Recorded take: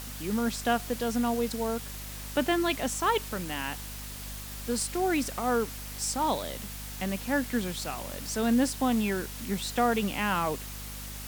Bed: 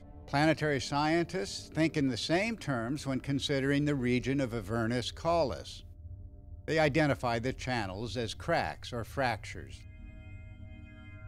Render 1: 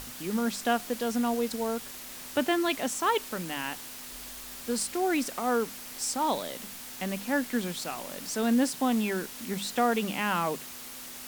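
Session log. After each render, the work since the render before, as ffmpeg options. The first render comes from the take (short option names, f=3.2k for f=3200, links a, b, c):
-af "bandreject=f=50:t=h:w=6,bandreject=f=100:t=h:w=6,bandreject=f=150:t=h:w=6,bandreject=f=200:t=h:w=6"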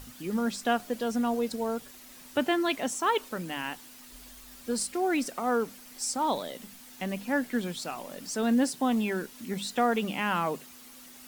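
-af "afftdn=nr=9:nf=-43"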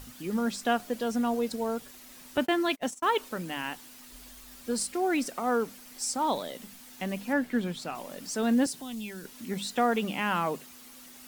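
-filter_complex "[0:a]asettb=1/sr,asplit=3[a][b][c];[a]atrim=end=2.374[d];[b]atrim=start=2.37:end=3.07,asetpts=PTS-STARTPTS,afade=t=in:d=0.004:c=qsin,afade=t=out:st=0.696:d=0.004:c=qsin,agate=range=-36dB:threshold=-34dB:ratio=16:release=100:detection=peak[e];[c]atrim=start=3.066[f];[d][e]acrossfade=d=0.004:c1=hsin:c2=qsin[g];[g][f]acrossfade=d=0.004:c1=qsin:c2=hsin,asettb=1/sr,asplit=3[h][i][j];[h]atrim=end=7.334[k];[i]atrim=start=7.33:end=7.95,asetpts=PTS-STARTPTS,afade=t=in:d=0.004:c=qsin,afade=t=out:st=0.616:d=0.004:c=qsin,bass=f=250:g=3,treble=f=4k:g=-6[l];[j]atrim=start=7.946[m];[k][l]acrossfade=d=0.004:c1=hsin:c2=qsin[n];[n][m]acrossfade=d=0.004:c1=qsin:c2=hsin,asettb=1/sr,asplit=3[o][p][q];[o]atrim=end=8.664[r];[p]atrim=start=8.66:end=9.25,asetpts=PTS-STARTPTS,afade=t=in:d=0.004:c=qsin,afade=t=out:st=0.586:d=0.004:c=qsin,acrossover=split=150|3000[s][t][u];[t]acompressor=threshold=-49dB:ratio=2.5:attack=3.2:release=140:knee=2.83:detection=peak[v];[s][v][u]amix=inputs=3:normalize=0[w];[q]atrim=start=9.246[x];[r][w]acrossfade=d=0.004:c1=hsin:c2=qsin[y];[y][x]acrossfade=d=0.004:c1=qsin:c2=hsin"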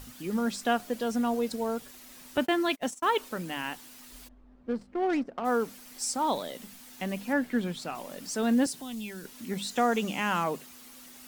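-filter_complex "[0:a]asplit=3[a][b][c];[a]afade=t=out:st=4.27:d=0.02[d];[b]adynamicsmooth=sensitivity=2.5:basefreq=620,afade=t=in:st=4.27:d=0.02,afade=t=out:st=5.44:d=0.02[e];[c]afade=t=in:st=5.44:d=0.02[f];[d][e][f]amix=inputs=3:normalize=0,asettb=1/sr,asplit=3[g][h][i];[g]atrim=end=9.714[j];[h]atrim=start=9.71:end=10.44,asetpts=PTS-STARTPTS,afade=t=in:d=0.004:c=qsin,afade=t=out:st=0.726:d=0.004:c=qsin,equalizer=f=6.6k:w=2.6:g=8.5[k];[i]atrim=start=10.436[l];[j][k]acrossfade=d=0.004:c1=hsin:c2=qsin[m];[m][l]acrossfade=d=0.004:c1=qsin:c2=hsin"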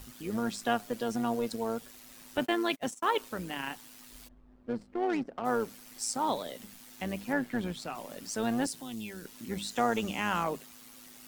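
-filter_complex "[0:a]acrossover=split=480[a][b];[a]asoftclip=type=hard:threshold=-27.5dB[c];[c][b]amix=inputs=2:normalize=0,tremolo=f=110:d=0.519"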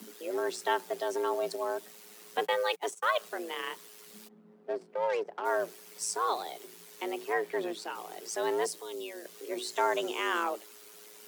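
-af "afreqshift=170"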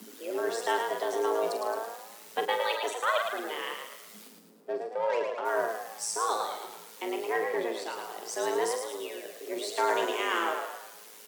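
-filter_complex "[0:a]asplit=2[a][b];[b]adelay=44,volume=-8.5dB[c];[a][c]amix=inputs=2:normalize=0,asplit=2[d][e];[e]asplit=6[f][g][h][i][j][k];[f]adelay=109,afreqshift=48,volume=-5dB[l];[g]adelay=218,afreqshift=96,volume=-11.4dB[m];[h]adelay=327,afreqshift=144,volume=-17.8dB[n];[i]adelay=436,afreqshift=192,volume=-24.1dB[o];[j]adelay=545,afreqshift=240,volume=-30.5dB[p];[k]adelay=654,afreqshift=288,volume=-36.9dB[q];[l][m][n][o][p][q]amix=inputs=6:normalize=0[r];[d][r]amix=inputs=2:normalize=0"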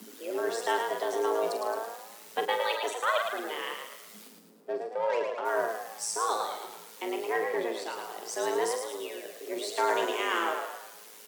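-af anull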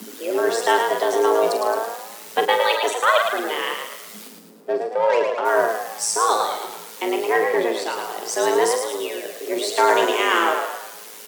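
-af "volume=10.5dB"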